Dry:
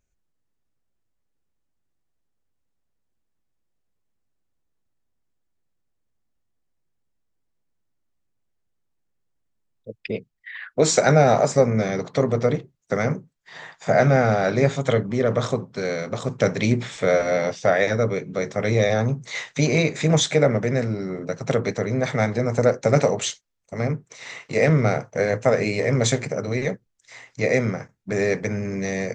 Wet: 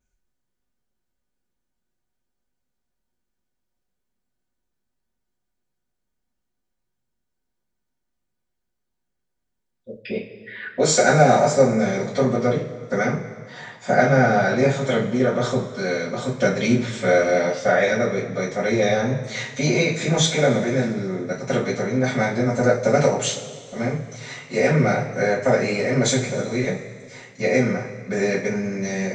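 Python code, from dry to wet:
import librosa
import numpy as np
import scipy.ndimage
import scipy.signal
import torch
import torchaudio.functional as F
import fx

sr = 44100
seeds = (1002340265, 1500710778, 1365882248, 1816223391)

y = fx.rev_double_slope(x, sr, seeds[0], early_s=0.28, late_s=2.0, knee_db=-18, drr_db=-10.0)
y = y * librosa.db_to_amplitude(-8.5)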